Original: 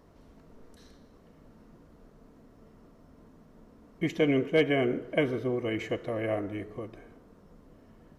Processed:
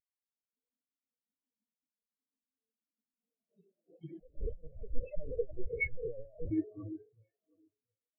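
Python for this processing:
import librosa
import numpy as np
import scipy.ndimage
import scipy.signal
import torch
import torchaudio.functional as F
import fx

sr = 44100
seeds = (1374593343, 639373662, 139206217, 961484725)

y = fx.hpss_only(x, sr, part='harmonic')
y = fx.highpass(y, sr, hz=220.0, slope=6)
y = fx.peak_eq(y, sr, hz=280.0, db=-6.0, octaves=1.7)
y = fx.over_compress(y, sr, threshold_db=-44.0, ratio=-1.0)
y = fx.echo_alternate(y, sr, ms=359, hz=920.0, feedback_pct=67, wet_db=-3.0)
y = fx.echo_pitch(y, sr, ms=191, semitones=3, count=3, db_per_echo=-6.0)
y = fx.lpc_vocoder(y, sr, seeds[0], excitation='pitch_kept', order=10, at=(4.19, 6.51))
y = fx.spectral_expand(y, sr, expansion=4.0)
y = y * librosa.db_to_amplitude(9.0)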